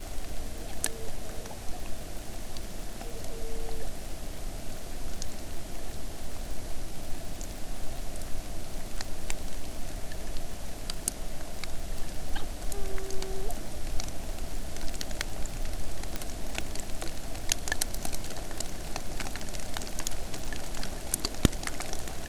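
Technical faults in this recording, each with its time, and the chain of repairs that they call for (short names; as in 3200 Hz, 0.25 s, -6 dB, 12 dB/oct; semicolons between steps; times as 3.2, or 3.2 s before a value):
crackle 44/s -34 dBFS
16.16 pop -15 dBFS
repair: de-click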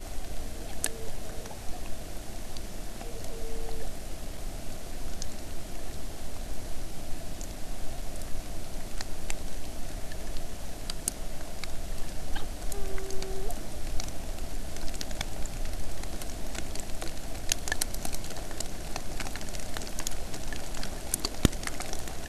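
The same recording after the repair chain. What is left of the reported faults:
none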